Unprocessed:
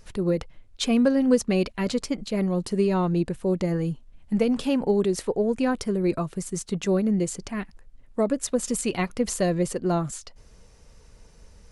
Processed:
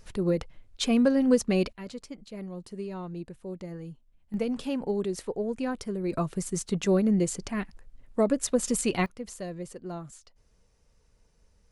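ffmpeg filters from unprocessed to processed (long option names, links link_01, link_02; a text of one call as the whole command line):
ffmpeg -i in.wav -af "asetnsamples=nb_out_samples=441:pad=0,asendcmd='1.73 volume volume -14dB;4.34 volume volume -7dB;6.13 volume volume -0.5dB;9.06 volume volume -13.5dB',volume=-2dB" out.wav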